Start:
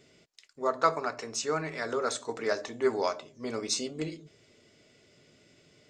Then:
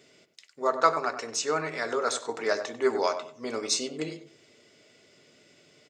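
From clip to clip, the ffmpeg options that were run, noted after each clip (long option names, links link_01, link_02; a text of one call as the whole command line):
ffmpeg -i in.wav -filter_complex "[0:a]highpass=frequency=290:poles=1,asplit=2[link_01][link_02];[link_02]adelay=96,lowpass=frequency=1800:poles=1,volume=-9.5dB,asplit=2[link_03][link_04];[link_04]adelay=96,lowpass=frequency=1800:poles=1,volume=0.25,asplit=2[link_05][link_06];[link_06]adelay=96,lowpass=frequency=1800:poles=1,volume=0.25[link_07];[link_03][link_05][link_07]amix=inputs=3:normalize=0[link_08];[link_01][link_08]amix=inputs=2:normalize=0,volume=3.5dB" out.wav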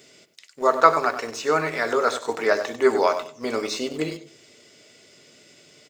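ffmpeg -i in.wav -filter_complex "[0:a]acrossover=split=3100[link_01][link_02];[link_02]acompressor=threshold=-50dB:ratio=4:attack=1:release=60[link_03];[link_01][link_03]amix=inputs=2:normalize=0,highshelf=frequency=5000:gain=8.5,asplit=2[link_04][link_05];[link_05]aeval=exprs='val(0)*gte(abs(val(0)),0.015)':channel_layout=same,volume=-11.5dB[link_06];[link_04][link_06]amix=inputs=2:normalize=0,volume=4.5dB" out.wav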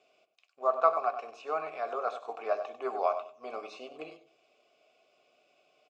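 ffmpeg -i in.wav -filter_complex "[0:a]asplit=3[link_01][link_02][link_03];[link_01]bandpass=frequency=730:width_type=q:width=8,volume=0dB[link_04];[link_02]bandpass=frequency=1090:width_type=q:width=8,volume=-6dB[link_05];[link_03]bandpass=frequency=2440:width_type=q:width=8,volume=-9dB[link_06];[link_04][link_05][link_06]amix=inputs=3:normalize=0" out.wav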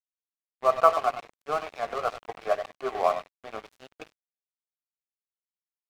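ffmpeg -i in.wav -af "aeval=exprs='sgn(val(0))*max(abs(val(0))-0.00944,0)':channel_layout=same,volume=6dB" out.wav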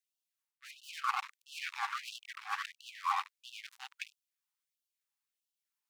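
ffmpeg -i in.wav -af "lowshelf=frequency=480:gain=9.5,areverse,acompressor=threshold=-26dB:ratio=16,areverse,afftfilt=real='re*gte(b*sr/1024,740*pow(2700/740,0.5+0.5*sin(2*PI*1.5*pts/sr)))':imag='im*gte(b*sr/1024,740*pow(2700/740,0.5+0.5*sin(2*PI*1.5*pts/sr)))':win_size=1024:overlap=0.75,volume=5.5dB" out.wav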